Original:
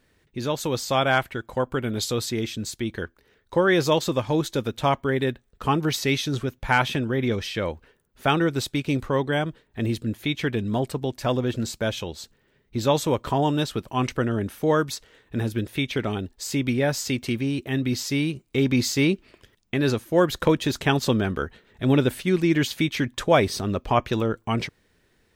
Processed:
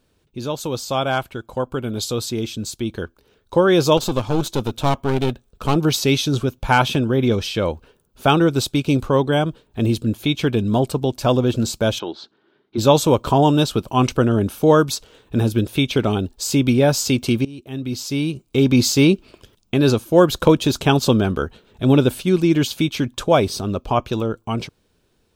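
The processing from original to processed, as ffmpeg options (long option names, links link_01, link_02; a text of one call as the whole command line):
ffmpeg -i in.wav -filter_complex "[0:a]asettb=1/sr,asplit=3[link_01][link_02][link_03];[link_01]atrim=end=3.974[link_04];[link_02]atrim=start=3.97:end=5.76,asetpts=PTS-STARTPTS,afade=type=in:duration=0.004:curve=qsin,afade=type=out:start_time=1.786:duration=0.004:curve=qsin,aeval=exprs='clip(val(0),-1,0.0211)':channel_layout=same[link_05];[link_03]atrim=start=5.756[link_06];[link_04][link_05]acrossfade=duration=0.004:curve1=hsin:curve2=qsin[link_07];[link_07][link_06]acrossfade=duration=0.004:curve1=qsin:curve2=hsin,asplit=3[link_08][link_09][link_10];[link_08]afade=type=out:start_time=11.98:duration=0.02[link_11];[link_09]highpass=310,equalizer=frequency=330:width_type=q:width=4:gain=7,equalizer=frequency=510:width_type=q:width=4:gain=-9,equalizer=frequency=1500:width_type=q:width=4:gain=5,equalizer=frequency=2600:width_type=q:width=4:gain=-8,lowpass=frequency=4000:width=0.5412,lowpass=frequency=4000:width=1.3066,afade=type=in:start_time=11.98:duration=0.02,afade=type=out:start_time=12.77:duration=0.02[link_12];[link_10]afade=type=in:start_time=12.77:duration=0.02[link_13];[link_11][link_12][link_13]amix=inputs=3:normalize=0,asplit=2[link_14][link_15];[link_14]atrim=end=17.45,asetpts=PTS-STARTPTS,afade=type=out:start_time=17.446:duration=0.004:curve=hsin:silence=0.0891251[link_16];[link_15]atrim=start=17.45,asetpts=PTS-STARTPTS,afade=type=in:duration=1.42:silence=0.0891251[link_17];[link_16][link_17]concat=n=2:v=0:a=1,dynaudnorm=framelen=910:gausssize=7:maxgain=11.5dB,equalizer=frequency=1900:width_type=o:width=0.38:gain=-14.5,volume=1dB" out.wav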